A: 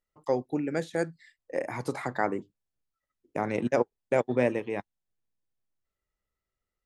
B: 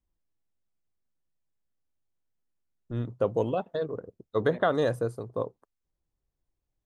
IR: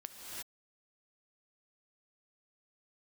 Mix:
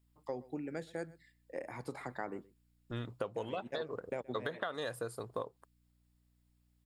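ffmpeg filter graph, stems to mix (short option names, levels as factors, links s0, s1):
-filter_complex "[0:a]aeval=exprs='val(0)+0.000891*(sin(2*PI*60*n/s)+sin(2*PI*2*60*n/s)/2+sin(2*PI*3*60*n/s)/3+sin(2*PI*4*60*n/s)/4+sin(2*PI*5*60*n/s)/5)':c=same,volume=0.316,asplit=2[s0][s1];[s1]volume=0.0668[s2];[1:a]deesser=1,tiltshelf=f=840:g=-8.5,volume=1.12,asplit=2[s3][s4];[s4]apad=whole_len=302518[s5];[s0][s5]sidechaincompress=threshold=0.0398:ratio=8:attack=16:release=625[s6];[s2]aecho=0:1:123:1[s7];[s6][s3][s7]amix=inputs=3:normalize=0,bandreject=f=6100:w=6.2,acompressor=threshold=0.02:ratio=12"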